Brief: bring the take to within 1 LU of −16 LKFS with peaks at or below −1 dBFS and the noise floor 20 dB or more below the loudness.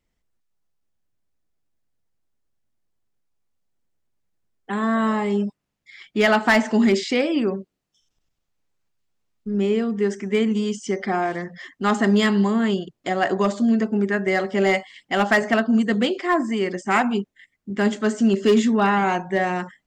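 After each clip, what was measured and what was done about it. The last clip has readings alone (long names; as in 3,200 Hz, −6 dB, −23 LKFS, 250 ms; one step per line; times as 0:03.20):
share of clipped samples 0.2%; peaks flattened at −10.5 dBFS; integrated loudness −21.0 LKFS; sample peak −10.5 dBFS; target loudness −16.0 LKFS
→ clipped peaks rebuilt −10.5 dBFS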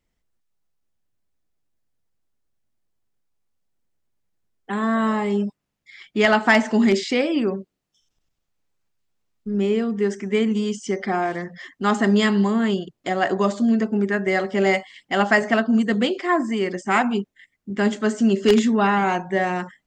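share of clipped samples 0.0%; integrated loudness −21.0 LKFS; sample peak −1.5 dBFS; target loudness −16.0 LKFS
→ level +5 dB
brickwall limiter −1 dBFS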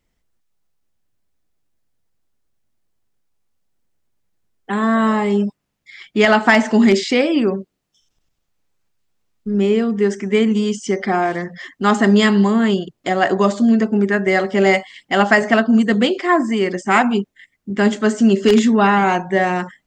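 integrated loudness −16.0 LKFS; sample peak −1.0 dBFS; background noise floor −73 dBFS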